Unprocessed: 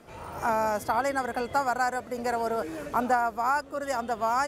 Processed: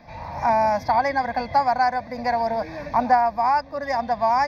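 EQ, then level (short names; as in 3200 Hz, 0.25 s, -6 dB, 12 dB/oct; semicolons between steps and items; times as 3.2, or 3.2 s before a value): polynomial smoothing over 15 samples; fixed phaser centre 2000 Hz, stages 8; +8.5 dB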